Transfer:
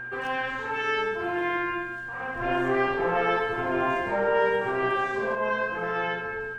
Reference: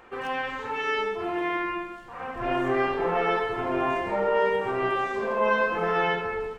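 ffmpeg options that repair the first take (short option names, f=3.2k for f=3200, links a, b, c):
-af "bandreject=f=121.5:t=h:w=4,bandreject=f=243:t=h:w=4,bandreject=f=364.5:t=h:w=4,bandreject=f=1.6k:w=30,asetnsamples=n=441:p=0,asendcmd='5.35 volume volume 4.5dB',volume=0dB"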